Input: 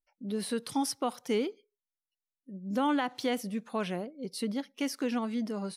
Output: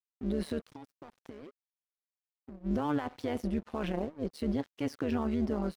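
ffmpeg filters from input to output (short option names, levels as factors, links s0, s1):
-filter_complex "[0:a]alimiter=level_in=1.78:limit=0.0631:level=0:latency=1:release=16,volume=0.562,asplit=3[s0][s1][s2];[s0]afade=t=out:st=0.6:d=0.02[s3];[s1]acompressor=threshold=0.00447:ratio=16,afade=t=in:st=0.6:d=0.02,afade=t=out:st=2.64:d=0.02[s4];[s2]afade=t=in:st=2.64:d=0.02[s5];[s3][s4][s5]amix=inputs=3:normalize=0,lowpass=f=1400:p=1,aeval=exprs='sgn(val(0))*max(abs(val(0))-0.00141,0)':c=same,tremolo=f=150:d=0.788,volume=2.82"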